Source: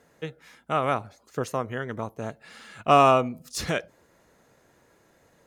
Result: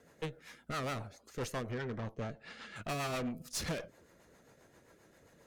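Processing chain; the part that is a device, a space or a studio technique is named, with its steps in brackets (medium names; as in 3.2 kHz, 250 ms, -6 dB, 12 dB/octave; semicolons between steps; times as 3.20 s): overdriven rotary cabinet (valve stage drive 35 dB, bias 0.5; rotary cabinet horn 7.5 Hz); 1.71–2.76 s: low-pass 5.1 kHz 12 dB/octave; trim +2.5 dB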